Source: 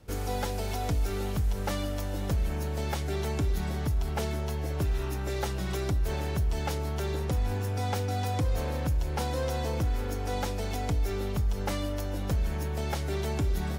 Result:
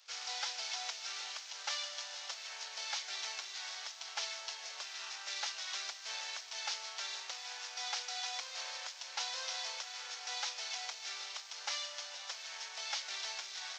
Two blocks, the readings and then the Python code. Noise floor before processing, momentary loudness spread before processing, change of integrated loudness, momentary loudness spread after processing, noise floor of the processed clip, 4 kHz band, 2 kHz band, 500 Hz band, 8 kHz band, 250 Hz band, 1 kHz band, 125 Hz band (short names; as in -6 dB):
-32 dBFS, 2 LU, -8.5 dB, 5 LU, -49 dBFS, +4.5 dB, -2.0 dB, -22.5 dB, +1.5 dB, under -40 dB, -10.0 dB, under -40 dB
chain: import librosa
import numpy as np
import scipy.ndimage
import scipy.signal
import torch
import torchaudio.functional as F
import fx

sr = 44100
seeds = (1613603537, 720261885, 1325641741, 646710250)

y = fx.cvsd(x, sr, bps=32000)
y = scipy.signal.sosfilt(scipy.signal.butter(4, 660.0, 'highpass', fs=sr, output='sos'), y)
y = np.diff(y, prepend=0.0)
y = y * librosa.db_to_amplitude(9.0)